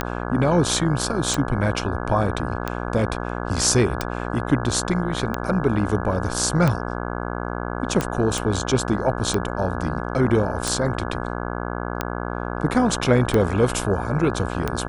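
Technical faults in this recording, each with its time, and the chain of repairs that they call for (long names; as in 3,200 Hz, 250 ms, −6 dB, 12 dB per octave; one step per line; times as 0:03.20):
mains buzz 60 Hz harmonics 28 −28 dBFS
scratch tick 45 rpm −8 dBFS
0:08.38: click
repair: click removal
hum removal 60 Hz, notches 28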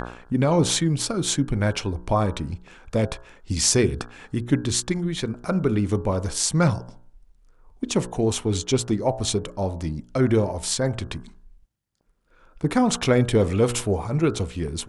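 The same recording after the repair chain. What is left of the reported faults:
none of them is left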